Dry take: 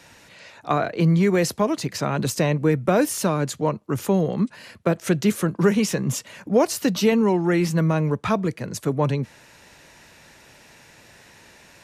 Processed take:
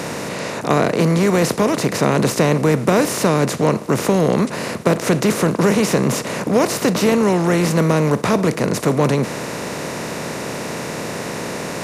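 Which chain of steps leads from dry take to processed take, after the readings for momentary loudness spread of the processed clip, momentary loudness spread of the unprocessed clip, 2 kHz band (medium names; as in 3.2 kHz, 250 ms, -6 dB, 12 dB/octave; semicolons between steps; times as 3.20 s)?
10 LU, 8 LU, +7.5 dB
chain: spectral levelling over time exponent 0.4; trim -1 dB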